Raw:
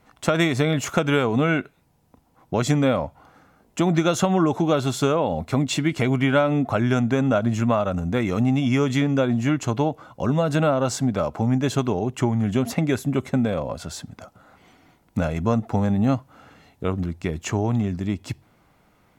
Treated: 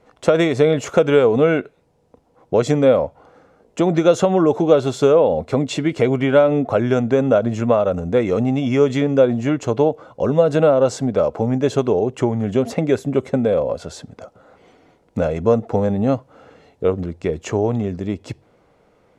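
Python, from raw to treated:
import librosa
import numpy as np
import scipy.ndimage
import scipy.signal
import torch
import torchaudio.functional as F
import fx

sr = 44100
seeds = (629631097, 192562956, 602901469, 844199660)

y = scipy.signal.sosfilt(scipy.signal.butter(2, 8500.0, 'lowpass', fs=sr, output='sos'), x)
y = fx.peak_eq(y, sr, hz=480.0, db=13.0, octaves=0.82)
y = y * librosa.db_to_amplitude(-1.0)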